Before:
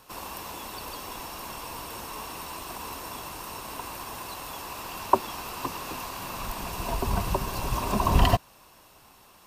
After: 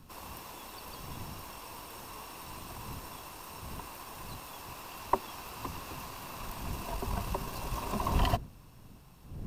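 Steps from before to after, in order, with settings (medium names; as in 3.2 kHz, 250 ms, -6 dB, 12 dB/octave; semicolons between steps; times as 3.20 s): partial rectifier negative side -3 dB; wind noise 140 Hz -42 dBFS; trim -6.5 dB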